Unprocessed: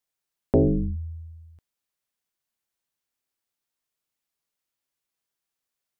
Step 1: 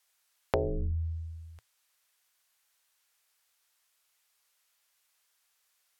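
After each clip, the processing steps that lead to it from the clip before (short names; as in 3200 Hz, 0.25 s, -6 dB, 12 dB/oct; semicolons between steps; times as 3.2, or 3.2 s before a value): treble ducked by the level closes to 1200 Hz, closed at -21.5 dBFS; EQ curve 110 Hz 0 dB, 230 Hz -17 dB, 430 Hz +2 dB, 710 Hz +7 dB, 1400 Hz +12 dB; compressor 4:1, threshold -28 dBFS, peak gain reduction 11.5 dB; gain +1 dB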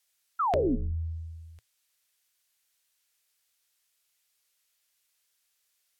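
bell 1000 Hz -8 dB 1.7 oct; painted sound fall, 0.39–0.76, 220–1400 Hz -26 dBFS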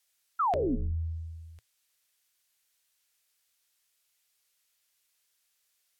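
limiter -21.5 dBFS, peak gain reduction 6 dB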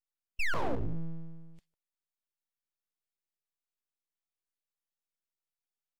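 speakerphone echo 0.15 s, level -12 dB; spectral noise reduction 21 dB; full-wave rectifier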